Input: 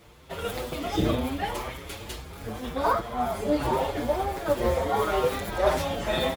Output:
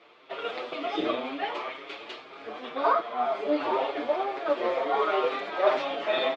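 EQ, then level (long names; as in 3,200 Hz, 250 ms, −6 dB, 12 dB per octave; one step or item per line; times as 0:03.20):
loudspeaker in its box 290–3,800 Hz, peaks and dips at 290 Hz +8 dB, 410 Hz +7 dB, 660 Hz +8 dB, 1,200 Hz +7 dB, 2,400 Hz +4 dB
spectral tilt +2.5 dB per octave
−4.0 dB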